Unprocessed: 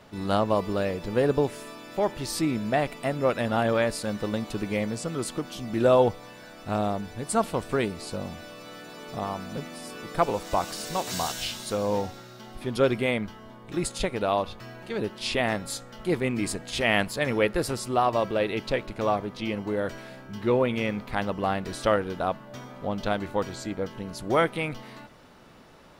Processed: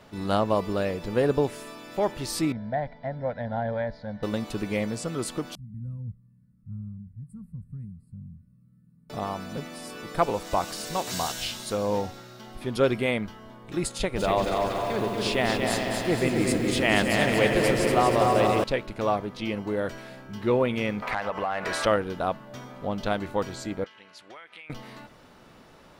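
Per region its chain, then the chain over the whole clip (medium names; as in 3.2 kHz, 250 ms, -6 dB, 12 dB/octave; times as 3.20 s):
2.52–4.23 s: tape spacing loss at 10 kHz 39 dB + static phaser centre 1.8 kHz, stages 8
5.55–9.10 s: inverse Chebyshev band-stop 330–6500 Hz + distance through air 140 m + comb of notches 770 Hz
13.93–18.64 s: delay with an opening low-pass 140 ms, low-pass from 400 Hz, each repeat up 2 oct, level -3 dB + bit-crushed delay 237 ms, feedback 55%, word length 8-bit, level -4 dB
21.02–21.86 s: high-order bell 1.1 kHz +9 dB 2.6 oct + compression 8:1, threshold -27 dBFS + overdrive pedal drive 12 dB, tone 7.2 kHz, clips at -16.5 dBFS
23.84–24.70 s: band-pass filter 2.4 kHz, Q 1.3 + compression 12:1, threshold -41 dBFS
whole clip: none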